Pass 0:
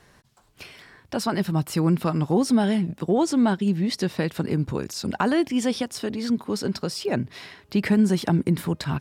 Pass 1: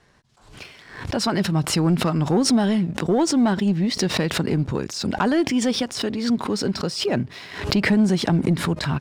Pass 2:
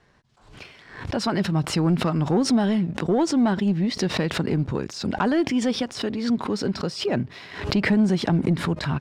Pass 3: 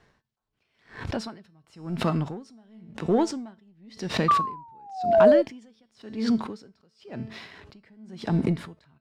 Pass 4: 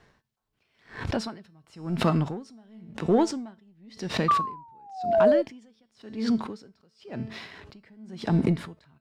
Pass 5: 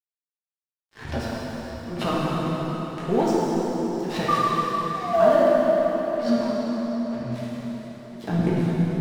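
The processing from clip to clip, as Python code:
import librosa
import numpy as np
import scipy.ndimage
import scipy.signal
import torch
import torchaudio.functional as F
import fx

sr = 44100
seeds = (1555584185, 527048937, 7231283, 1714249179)

y1 = scipy.signal.sosfilt(scipy.signal.butter(2, 7700.0, 'lowpass', fs=sr, output='sos'), x)
y1 = fx.leveller(y1, sr, passes=1)
y1 = fx.pre_swell(y1, sr, db_per_s=86.0)
y1 = F.gain(torch.from_numpy(y1), -1.0).numpy()
y2 = fx.high_shelf(y1, sr, hz=6800.0, db=-10.5)
y2 = F.gain(torch.from_numpy(y2), -1.5).numpy()
y3 = fx.comb_fb(y2, sr, f0_hz=220.0, decay_s=0.53, harmonics='all', damping=0.0, mix_pct=60)
y3 = fx.spec_paint(y3, sr, seeds[0], shape='fall', start_s=4.28, length_s=1.14, low_hz=560.0, high_hz=1200.0, level_db=-21.0)
y3 = y3 * 10.0 ** (-35 * (0.5 - 0.5 * np.cos(2.0 * np.pi * 0.95 * np.arange(len(y3)) / sr)) / 20.0)
y3 = F.gain(torch.from_numpy(y3), 6.5).numpy()
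y4 = fx.rider(y3, sr, range_db=4, speed_s=2.0)
y5 = fx.chorus_voices(y4, sr, voices=6, hz=0.48, base_ms=12, depth_ms=4.6, mix_pct=35)
y5 = np.sign(y5) * np.maximum(np.abs(y5) - 10.0 ** (-44.0 / 20.0), 0.0)
y5 = fx.rev_plate(y5, sr, seeds[1], rt60_s=5.0, hf_ratio=0.75, predelay_ms=0, drr_db=-7.0)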